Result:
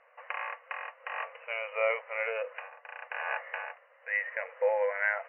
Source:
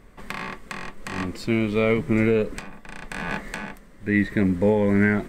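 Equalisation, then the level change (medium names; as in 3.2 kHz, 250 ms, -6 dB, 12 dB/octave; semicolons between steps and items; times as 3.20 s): brick-wall FIR band-pass 470–3000 Hz; distance through air 130 m; -2.0 dB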